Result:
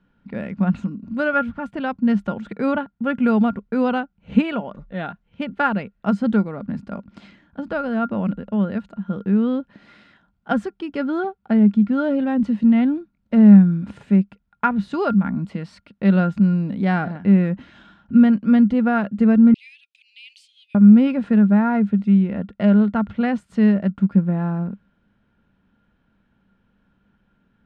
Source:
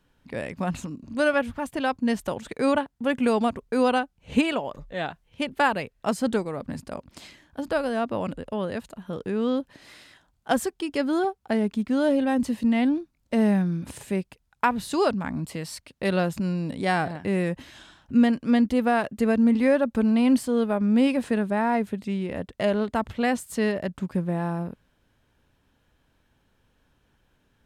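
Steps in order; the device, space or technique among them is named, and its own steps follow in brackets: inside a cardboard box (LPF 2900 Hz 12 dB/oct; small resonant body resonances 200/1400 Hz, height 16 dB, ringing for 90 ms); 19.54–20.75 steep high-pass 2400 Hz 72 dB/oct; gain -1 dB

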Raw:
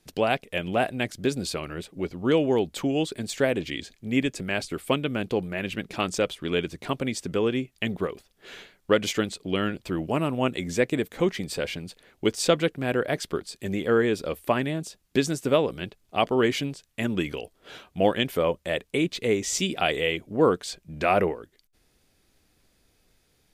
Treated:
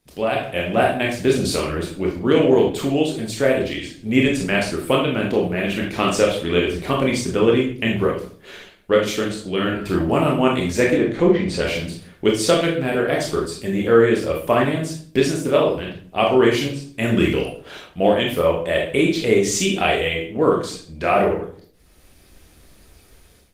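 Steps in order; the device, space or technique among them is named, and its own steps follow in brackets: 10.84–11.57 treble ducked by the level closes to 880 Hz, closed at -18.5 dBFS; speakerphone in a meeting room (reverb RT60 0.50 s, pre-delay 21 ms, DRR -2 dB; AGC gain up to 15 dB; gain -2.5 dB; Opus 24 kbps 48000 Hz)

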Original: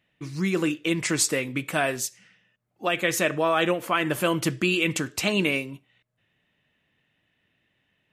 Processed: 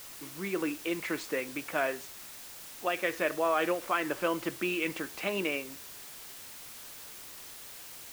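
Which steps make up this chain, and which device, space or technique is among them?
wax cylinder (BPF 320–2300 Hz; wow and flutter; white noise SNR 12 dB); gain -4.5 dB

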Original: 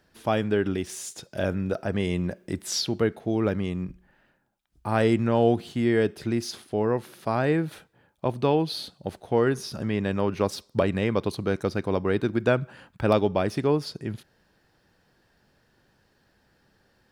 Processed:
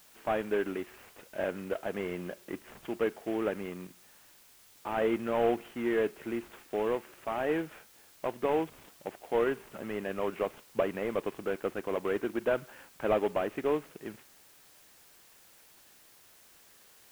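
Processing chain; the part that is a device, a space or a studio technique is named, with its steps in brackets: army field radio (BPF 330–3400 Hz; CVSD 16 kbps; white noise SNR 25 dB); gain -3 dB

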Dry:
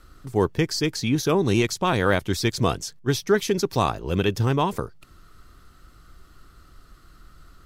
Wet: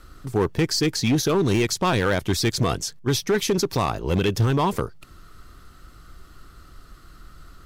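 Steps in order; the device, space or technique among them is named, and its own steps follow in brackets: limiter into clipper (limiter -13.5 dBFS, peak gain reduction 5.5 dB; hard clip -19 dBFS, distortion -14 dB); gain +4 dB

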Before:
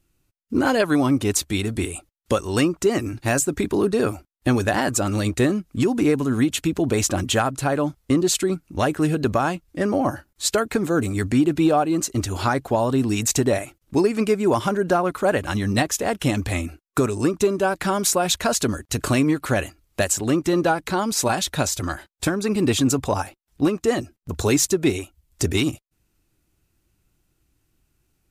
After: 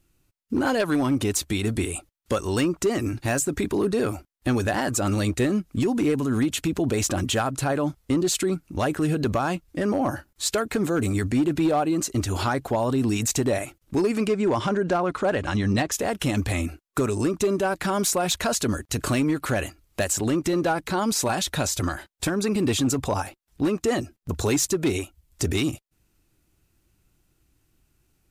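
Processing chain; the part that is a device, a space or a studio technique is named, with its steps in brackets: 14.27–15.92 Bessel low-pass 6100 Hz, order 4; clipper into limiter (hard clip -12.5 dBFS, distortion -23 dB; limiter -17.5 dBFS, peak gain reduction 5 dB); gain +1.5 dB

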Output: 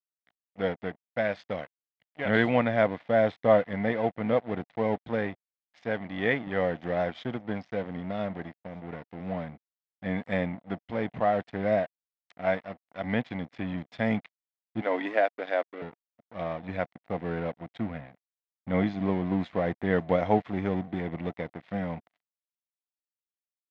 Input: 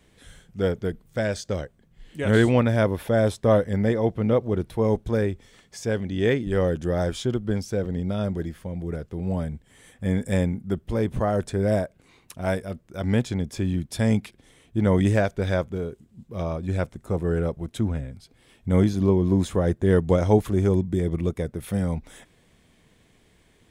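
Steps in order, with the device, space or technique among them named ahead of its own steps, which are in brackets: 14.81–15.82 elliptic high-pass 260 Hz, stop band 40 dB; thin delay 0.523 s, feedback 73%, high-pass 4600 Hz, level -20 dB; blown loudspeaker (crossover distortion -38 dBFS; speaker cabinet 180–3700 Hz, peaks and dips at 380 Hz -9 dB, 710 Hz +8 dB, 2000 Hz +8 dB); gain -2.5 dB

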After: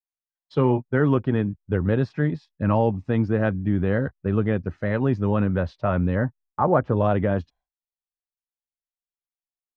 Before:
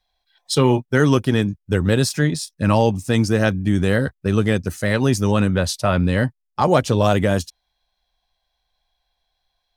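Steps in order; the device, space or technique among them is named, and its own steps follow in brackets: hearing-loss simulation (LPF 1600 Hz 12 dB/oct; expander -44 dBFS); LPF 4500 Hz 12 dB/oct; 6.15–6.97 resonant high shelf 2100 Hz -9.5 dB, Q 1.5; gain -4 dB

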